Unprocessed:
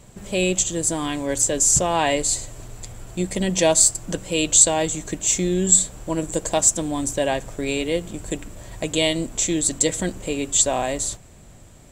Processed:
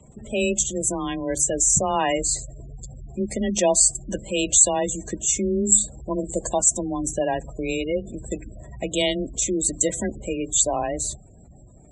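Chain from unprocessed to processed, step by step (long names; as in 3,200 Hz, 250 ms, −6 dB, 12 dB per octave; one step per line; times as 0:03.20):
frequency shifter +20 Hz
gate on every frequency bin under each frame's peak −20 dB strong
level −1.5 dB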